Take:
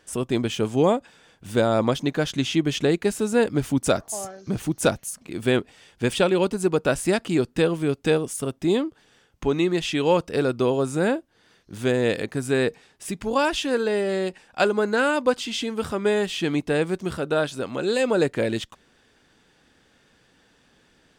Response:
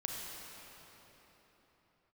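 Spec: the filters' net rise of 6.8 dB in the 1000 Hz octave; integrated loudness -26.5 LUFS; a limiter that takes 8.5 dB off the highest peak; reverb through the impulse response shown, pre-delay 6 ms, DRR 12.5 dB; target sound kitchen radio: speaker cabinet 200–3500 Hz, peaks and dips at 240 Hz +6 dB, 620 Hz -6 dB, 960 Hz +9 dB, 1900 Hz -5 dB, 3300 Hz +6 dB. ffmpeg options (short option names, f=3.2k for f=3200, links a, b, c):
-filter_complex "[0:a]equalizer=f=1k:t=o:g=3.5,alimiter=limit=-15dB:level=0:latency=1,asplit=2[a][b];[1:a]atrim=start_sample=2205,adelay=6[c];[b][c]afir=irnorm=-1:irlink=0,volume=-14.5dB[d];[a][d]amix=inputs=2:normalize=0,highpass=200,equalizer=f=240:t=q:w=4:g=6,equalizer=f=620:t=q:w=4:g=-6,equalizer=f=960:t=q:w=4:g=9,equalizer=f=1.9k:t=q:w=4:g=-5,equalizer=f=3.3k:t=q:w=4:g=6,lowpass=f=3.5k:w=0.5412,lowpass=f=3.5k:w=1.3066,volume=-0.5dB"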